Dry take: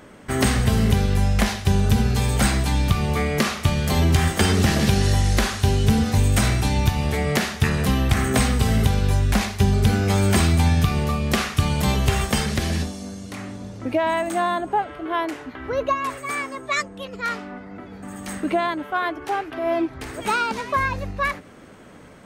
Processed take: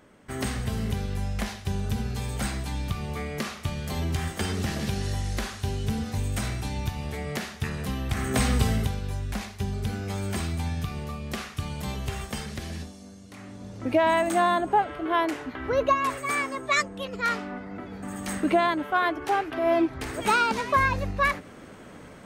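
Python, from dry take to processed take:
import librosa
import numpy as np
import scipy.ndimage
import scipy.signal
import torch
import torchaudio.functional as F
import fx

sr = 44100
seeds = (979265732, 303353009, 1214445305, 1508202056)

y = fx.gain(x, sr, db=fx.line((8.04, -10.5), (8.57, -2.0), (9.01, -12.0), (13.29, -12.0), (13.98, 0.0)))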